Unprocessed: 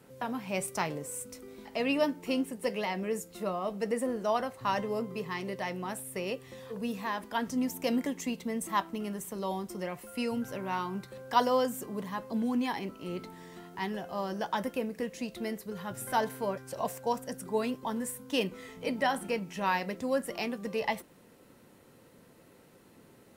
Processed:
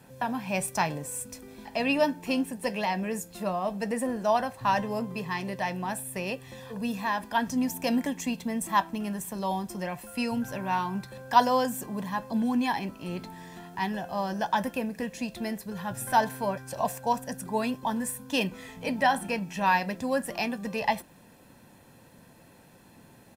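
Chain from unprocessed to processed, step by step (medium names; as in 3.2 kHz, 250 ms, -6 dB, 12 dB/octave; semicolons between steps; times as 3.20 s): comb 1.2 ms, depth 49%; trim +3.5 dB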